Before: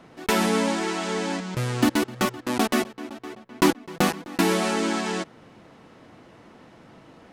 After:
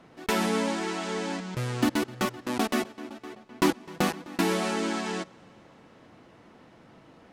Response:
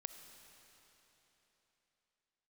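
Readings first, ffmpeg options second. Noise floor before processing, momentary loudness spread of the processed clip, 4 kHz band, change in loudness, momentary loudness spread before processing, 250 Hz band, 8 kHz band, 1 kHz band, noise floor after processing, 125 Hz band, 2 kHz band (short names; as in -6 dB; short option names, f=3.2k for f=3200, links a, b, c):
-52 dBFS, 11 LU, -4.5 dB, -4.0 dB, 11 LU, -4.0 dB, -5.5 dB, -4.0 dB, -55 dBFS, -4.0 dB, -4.0 dB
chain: -filter_complex "[0:a]asplit=2[a][b];[1:a]atrim=start_sample=2205,lowpass=7.8k[c];[b][c]afir=irnorm=-1:irlink=0,volume=-11dB[d];[a][d]amix=inputs=2:normalize=0,volume=-5.5dB"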